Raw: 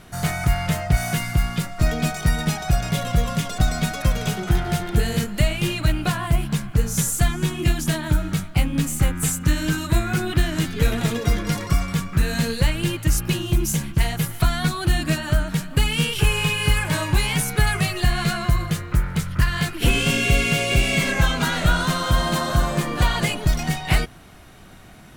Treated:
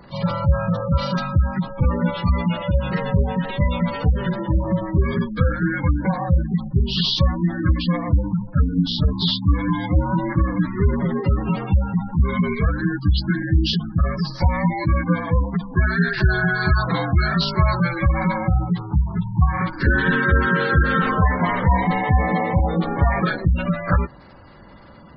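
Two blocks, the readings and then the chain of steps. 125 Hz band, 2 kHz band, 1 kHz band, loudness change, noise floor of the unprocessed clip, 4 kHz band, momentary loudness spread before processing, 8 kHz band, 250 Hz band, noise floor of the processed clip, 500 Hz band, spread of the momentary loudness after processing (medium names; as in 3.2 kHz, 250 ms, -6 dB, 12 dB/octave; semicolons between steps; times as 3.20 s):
+2.0 dB, +1.0 dB, +3.5 dB, +1.5 dB, -42 dBFS, -2.0 dB, 4 LU, under -25 dB, +3.5 dB, -37 dBFS, +2.5 dB, 4 LU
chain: frequency axis rescaled in octaves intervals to 77%; spectral gate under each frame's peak -20 dB strong; trim +3.5 dB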